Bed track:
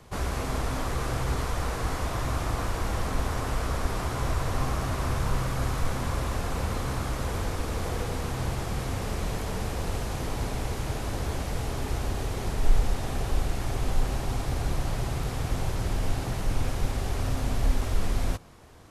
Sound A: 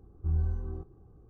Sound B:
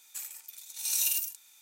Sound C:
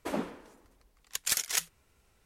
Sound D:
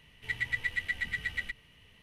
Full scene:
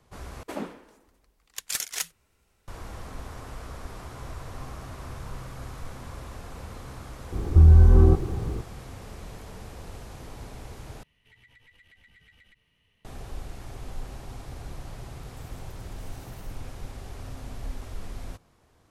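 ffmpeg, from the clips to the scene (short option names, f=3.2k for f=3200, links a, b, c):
-filter_complex "[0:a]volume=-11dB[a];[1:a]alimiter=level_in=31.5dB:limit=-1dB:release=50:level=0:latency=1[b];[4:a]acompressor=threshold=-44dB:ratio=6:attack=1.1:release=62:knee=1:detection=peak[c];[2:a]acompressor=threshold=-39dB:ratio=6:attack=3.2:release=140:knee=1:detection=peak[d];[a]asplit=3[e][f][g];[e]atrim=end=0.434[h];[3:a]atrim=end=2.25,asetpts=PTS-STARTPTS,volume=-1dB[i];[f]atrim=start=2.676:end=11.034[j];[c]atrim=end=2.02,asetpts=PTS-STARTPTS,volume=-10.5dB[k];[g]atrim=start=13.046[l];[b]atrim=end=1.29,asetpts=PTS-STARTPTS,volume=-6.5dB,afade=t=in:d=0.004:c=hsin,afade=t=out:st=1.286:d=0.004:c=hsin,adelay=7320[m];[d]atrim=end=1.61,asetpts=PTS-STARTPTS,volume=-17dB,afade=t=in:d=0.004:c=hsin,afade=t=out:st=1.606:d=0.004:c=hsin,adelay=15220[n];[h][i]acrossfade=d=0.004:c1=hsin:c2=hsin[o];[o][j]acrossfade=d=0.004:c1=hsin:c2=hsin[p];[p][k]acrossfade=d=0.004:c1=hsin:c2=hsin[q];[q][l]acrossfade=d=0.004:c1=hsin:c2=hsin[r];[r][m][n]amix=inputs=3:normalize=0"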